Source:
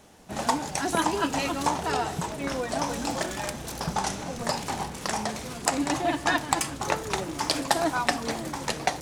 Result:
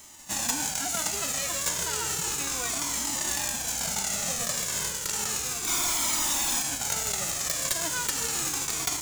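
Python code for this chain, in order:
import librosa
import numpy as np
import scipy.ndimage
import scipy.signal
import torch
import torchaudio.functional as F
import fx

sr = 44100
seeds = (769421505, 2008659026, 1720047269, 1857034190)

p1 = fx.envelope_flatten(x, sr, power=0.3)
p2 = fx.peak_eq(p1, sr, hz=7000.0, db=11.0, octaves=0.49)
p3 = fx.over_compress(p2, sr, threshold_db=-30.0, ratio=-0.5)
p4 = p2 + (p3 * librosa.db_to_amplitude(1.5))
p5 = (np.mod(10.0 ** (7.5 / 20.0) * p4 + 1.0, 2.0) - 1.0) / 10.0 ** (7.5 / 20.0)
p6 = fx.spec_freeze(p5, sr, seeds[0], at_s=5.68, hold_s=0.93)
p7 = fx.comb_cascade(p6, sr, direction='falling', hz=0.33)
y = p7 * librosa.db_to_amplitude(-3.5)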